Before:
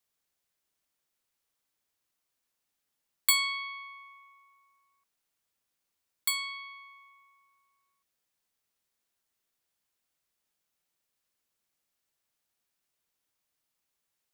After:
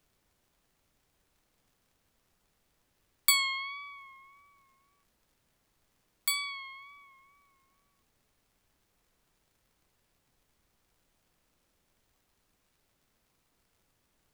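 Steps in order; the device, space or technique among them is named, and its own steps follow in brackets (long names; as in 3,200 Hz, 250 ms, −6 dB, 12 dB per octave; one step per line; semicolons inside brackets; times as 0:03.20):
vinyl LP (tape wow and flutter; surface crackle; pink noise bed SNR 33 dB)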